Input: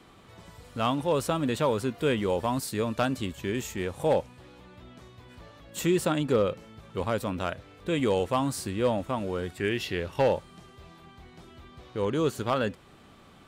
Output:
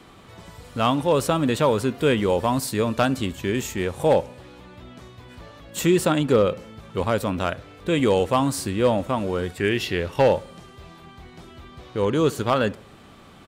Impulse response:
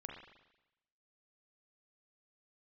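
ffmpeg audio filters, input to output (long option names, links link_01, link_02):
-filter_complex "[0:a]asplit=2[link_01][link_02];[link_02]adelay=68,lowpass=frequency=2000:poles=1,volume=-22dB,asplit=2[link_03][link_04];[link_04]adelay=68,lowpass=frequency=2000:poles=1,volume=0.53,asplit=2[link_05][link_06];[link_06]adelay=68,lowpass=frequency=2000:poles=1,volume=0.53,asplit=2[link_07][link_08];[link_08]adelay=68,lowpass=frequency=2000:poles=1,volume=0.53[link_09];[link_01][link_03][link_05][link_07][link_09]amix=inputs=5:normalize=0,volume=6dB"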